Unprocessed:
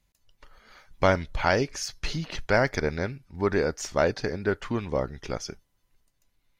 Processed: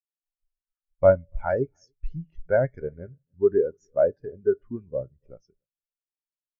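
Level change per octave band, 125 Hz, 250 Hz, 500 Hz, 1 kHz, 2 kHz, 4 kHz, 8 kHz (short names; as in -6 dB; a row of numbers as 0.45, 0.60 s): -3.0 dB, -4.5 dB, +4.0 dB, -6.0 dB, -9.5 dB, under -30 dB, under -30 dB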